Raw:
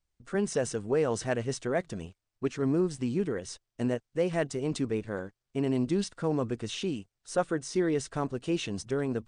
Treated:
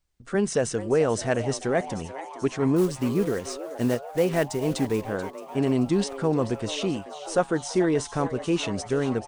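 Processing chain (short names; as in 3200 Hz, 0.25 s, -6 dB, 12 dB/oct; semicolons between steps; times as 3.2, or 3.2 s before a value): 2.76–5.02 block floating point 5-bit; frequency-shifting echo 0.435 s, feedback 65%, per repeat +140 Hz, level -14.5 dB; gain +5 dB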